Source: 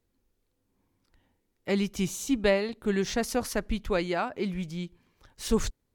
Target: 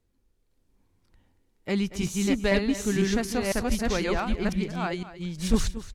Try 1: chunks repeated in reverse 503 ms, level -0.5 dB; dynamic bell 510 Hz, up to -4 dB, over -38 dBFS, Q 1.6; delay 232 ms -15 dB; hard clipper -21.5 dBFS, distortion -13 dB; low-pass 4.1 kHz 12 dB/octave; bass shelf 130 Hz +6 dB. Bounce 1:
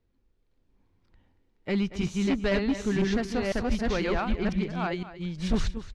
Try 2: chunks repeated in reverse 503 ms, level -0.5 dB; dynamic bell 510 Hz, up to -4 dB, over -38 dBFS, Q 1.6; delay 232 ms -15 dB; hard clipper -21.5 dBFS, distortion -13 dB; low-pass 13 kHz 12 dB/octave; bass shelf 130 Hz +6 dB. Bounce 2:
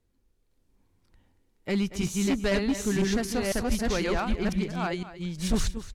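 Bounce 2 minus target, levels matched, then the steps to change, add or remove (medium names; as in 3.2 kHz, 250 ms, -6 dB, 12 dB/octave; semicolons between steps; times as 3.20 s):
hard clipper: distortion +12 dB
change: hard clipper -14.5 dBFS, distortion -25 dB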